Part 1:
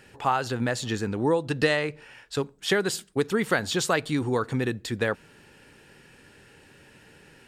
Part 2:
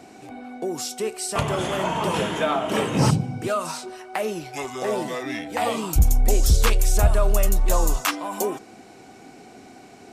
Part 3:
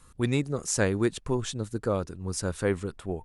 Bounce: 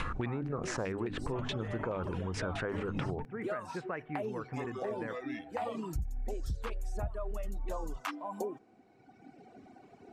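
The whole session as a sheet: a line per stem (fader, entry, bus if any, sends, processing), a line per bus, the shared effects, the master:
-12.0 dB, 0.00 s, no send, steep low-pass 2.4 kHz 48 dB/octave
-4.5 dB, 0.00 s, no send, low-pass 1.1 kHz 6 dB/octave; reverb removal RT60 1.9 s
0.0 dB, 0.00 s, no send, hum notches 50/100/150/200/250/300 Hz; LFO low-pass saw down 4.7 Hz 790–2800 Hz; level flattener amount 70%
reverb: none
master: compression 6:1, threshold -33 dBFS, peak gain reduction 16 dB

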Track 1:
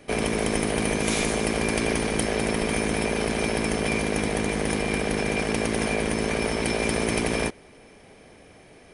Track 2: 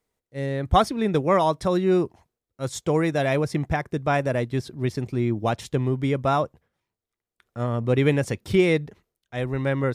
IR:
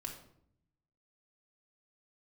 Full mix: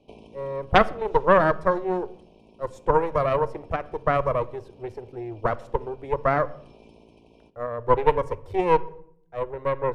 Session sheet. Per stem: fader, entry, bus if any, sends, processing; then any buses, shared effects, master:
-10.0 dB, 0.00 s, send -19 dB, low-pass 3.3 kHz 12 dB/octave; compression 6:1, threshold -31 dBFS, peak gain reduction 10.5 dB; elliptic band-stop 1–2.6 kHz; auto duck -11 dB, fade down 0.75 s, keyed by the second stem
-3.5 dB, 0.00 s, send -8.5 dB, FFT filter 100 Hz 0 dB, 190 Hz -27 dB, 480 Hz +9 dB, 730 Hz +3 dB, 3.6 kHz -15 dB; Chebyshev shaper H 3 -18 dB, 4 -7 dB, 6 -23 dB, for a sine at -3.5 dBFS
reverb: on, RT60 0.65 s, pre-delay 3 ms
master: none

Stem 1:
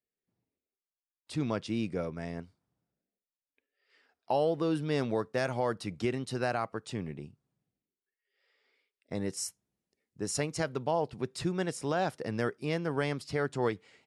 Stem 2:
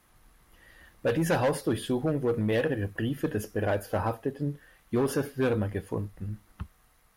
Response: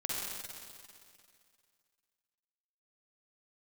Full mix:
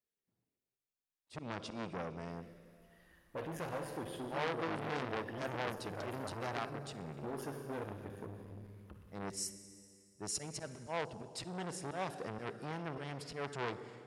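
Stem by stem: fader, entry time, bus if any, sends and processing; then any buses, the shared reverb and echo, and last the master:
-4.5 dB, 0.00 s, send -14.5 dB, slow attack 104 ms
-16.0 dB, 2.30 s, send -4.5 dB, none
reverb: on, RT60 2.3 s, pre-delay 44 ms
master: transformer saturation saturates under 2.1 kHz

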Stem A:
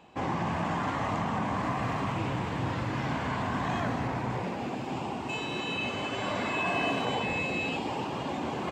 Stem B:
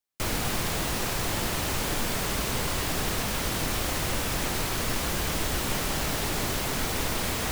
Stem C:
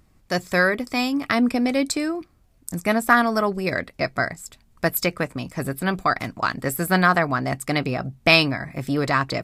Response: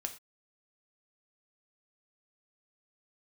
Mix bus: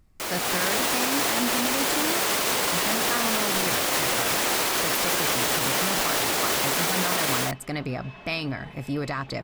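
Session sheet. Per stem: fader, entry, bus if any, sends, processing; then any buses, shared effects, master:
-15.0 dB, 1.50 s, no send, comb filter that takes the minimum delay 4.7 ms; low-pass 4.4 kHz 12 dB/octave
-1.0 dB, 0.00 s, no send, high-pass 370 Hz 12 dB/octave; level rider gain up to 9 dB
-6.0 dB, 0.00 s, no send, peak limiter -13 dBFS, peak gain reduction 9.5 dB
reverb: none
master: bass shelf 65 Hz +9.5 dB; peak limiter -14 dBFS, peak gain reduction 5 dB

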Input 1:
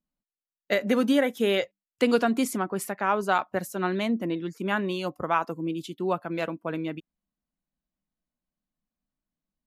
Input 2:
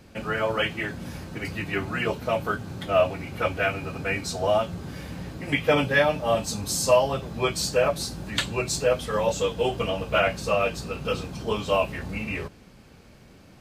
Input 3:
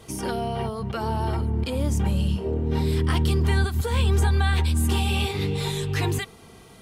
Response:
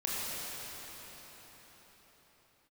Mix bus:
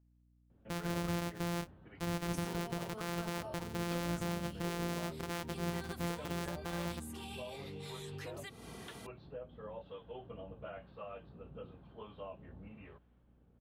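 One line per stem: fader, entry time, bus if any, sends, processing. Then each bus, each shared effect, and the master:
-7.0 dB, 0.00 s, no bus, no send, sorted samples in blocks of 256 samples
-17.5 dB, 0.50 s, bus A, no send, steep low-pass 3.4 kHz 48 dB/octave; peaking EQ 2.4 kHz -11.5 dB 0.84 oct; harmonic tremolo 1 Hz, depth 50%, crossover 700 Hz
-1.0 dB, 2.25 s, bus A, no send, peak limiter -18.5 dBFS, peak gain reduction 7.5 dB; high-pass 140 Hz 12 dB/octave; compression, threshold -38 dBFS, peak gain reduction 12.5 dB
bus A: 0.0 dB, compression, threshold -42 dBFS, peak gain reduction 10 dB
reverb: none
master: hum 60 Hz, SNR 32 dB; peak limiter -29 dBFS, peak gain reduction 11.5 dB

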